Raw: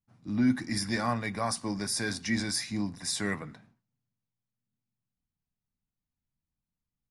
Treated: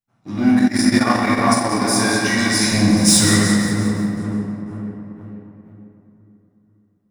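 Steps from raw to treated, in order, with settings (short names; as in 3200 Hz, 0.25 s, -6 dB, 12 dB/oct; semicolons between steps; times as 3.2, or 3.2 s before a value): 2.61–3.27 tone controls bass +14 dB, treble +11 dB; split-band echo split 1300 Hz, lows 0.487 s, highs 0.178 s, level -9 dB; sample leveller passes 2; notch 4600 Hz, Q 12; reverb RT60 2.7 s, pre-delay 6 ms, DRR -6.5 dB; 0.56–1.84 transient shaper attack +2 dB, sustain -12 dB; low shelf 150 Hz -11.5 dB; gain +1 dB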